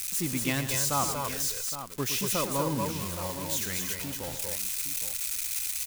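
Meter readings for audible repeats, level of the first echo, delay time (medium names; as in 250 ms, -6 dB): 3, -10.5 dB, 114 ms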